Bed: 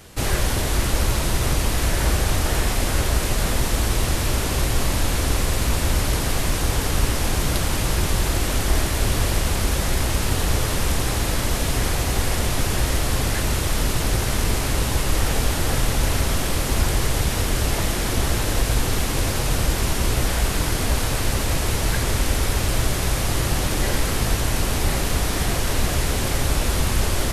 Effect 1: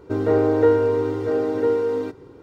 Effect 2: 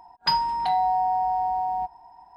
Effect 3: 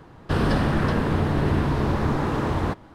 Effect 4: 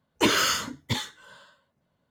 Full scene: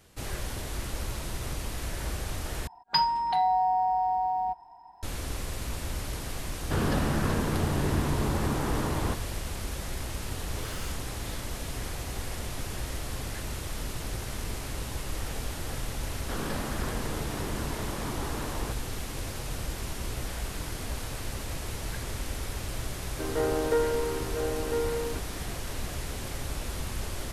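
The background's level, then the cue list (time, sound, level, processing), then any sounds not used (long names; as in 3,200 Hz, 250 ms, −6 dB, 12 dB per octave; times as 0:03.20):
bed −13.5 dB
0:02.67: overwrite with 2 −2 dB
0:06.41: mix in 3 −6 dB
0:10.35: mix in 4 −17.5 dB + hard clipping −24.5 dBFS
0:15.99: mix in 3 −10.5 dB + high-pass filter 240 Hz 6 dB per octave
0:23.09: mix in 1 −3.5 dB + high-pass filter 830 Hz 6 dB per octave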